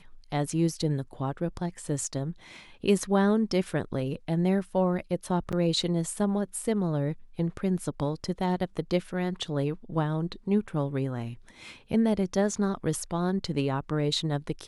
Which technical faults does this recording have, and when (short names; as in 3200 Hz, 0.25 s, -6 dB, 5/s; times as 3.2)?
5.52–5.53 gap 6.8 ms